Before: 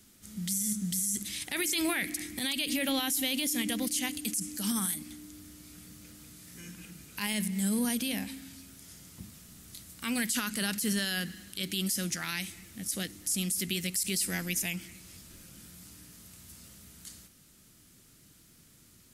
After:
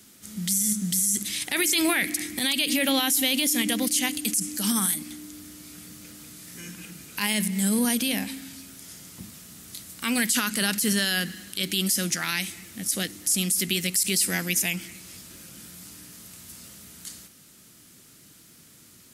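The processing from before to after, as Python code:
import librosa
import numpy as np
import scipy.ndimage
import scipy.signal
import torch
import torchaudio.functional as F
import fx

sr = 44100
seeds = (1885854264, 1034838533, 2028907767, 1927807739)

y = fx.highpass(x, sr, hz=170.0, slope=6)
y = y * librosa.db_to_amplitude(7.5)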